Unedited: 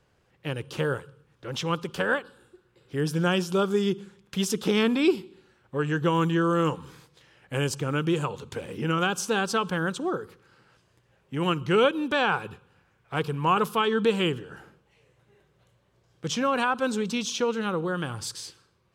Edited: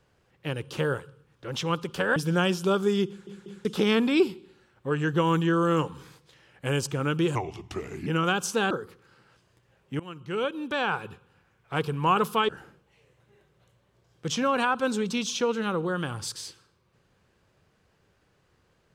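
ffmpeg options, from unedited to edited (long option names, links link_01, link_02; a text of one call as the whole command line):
ffmpeg -i in.wav -filter_complex "[0:a]asplit=10[link_01][link_02][link_03][link_04][link_05][link_06][link_07][link_08][link_09][link_10];[link_01]atrim=end=2.162[link_11];[link_02]atrim=start=3.038:end=4.152[link_12];[link_03]atrim=start=3.958:end=4.152[link_13];[link_04]atrim=start=3.958:end=4.152[link_14];[link_05]atrim=start=4.528:end=8.234[link_15];[link_06]atrim=start=8.23:end=8.81,asetpts=PTS-STARTPTS,asetrate=35721,aresample=44100[link_16];[link_07]atrim=start=8.806:end=9.452[link_17];[link_08]atrim=start=10.108:end=11.4,asetpts=PTS-STARTPTS,afade=type=out:start_time=1.288:duration=0.004:curve=hsin:silence=0.0841395[link_18];[link_09]atrim=start=11.4:end=13.892,asetpts=PTS-STARTPTS,afade=type=in:duration=1.86:curve=qsin:silence=0.0841395[link_19];[link_10]atrim=start=14.478[link_20];[link_11][link_12]acrossfade=duration=0.004:curve1=hsin:curve2=hsin[link_21];[link_21][link_13]acrossfade=duration=0.004:curve1=hsin:curve2=hsin[link_22];[link_22][link_14]acrossfade=duration=0.004:curve1=hsin:curve2=hsin[link_23];[link_23][link_15]acrossfade=duration=0.004:curve1=hsin:curve2=hsin[link_24];[link_24][link_16]acrossfade=duration=0.004:curve1=hsin:curve2=hsin[link_25];[link_25][link_17]acrossfade=duration=0.004:curve1=hsin:curve2=hsin[link_26];[link_18][link_19]concat=n=2:v=0:a=1[link_27];[link_26][link_27]acrossfade=duration=0.004:curve1=hsin:curve2=hsin[link_28];[link_28][link_20]acrossfade=duration=0.004:curve1=hsin:curve2=hsin" out.wav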